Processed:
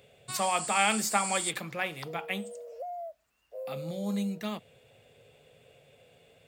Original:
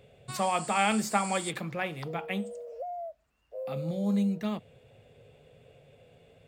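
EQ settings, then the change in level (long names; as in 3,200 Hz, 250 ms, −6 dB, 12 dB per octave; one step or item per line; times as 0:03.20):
spectral tilt +2 dB per octave
0.0 dB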